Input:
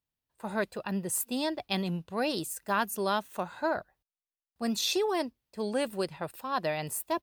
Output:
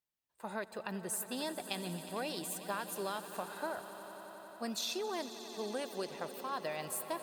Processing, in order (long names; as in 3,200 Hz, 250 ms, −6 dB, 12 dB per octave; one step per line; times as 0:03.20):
low-shelf EQ 210 Hz −10.5 dB
downward compressor, threshold −32 dBFS, peak gain reduction 9 dB
on a send: echo that builds up and dies away 90 ms, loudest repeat 5, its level −16.5 dB
on the sum: level −3 dB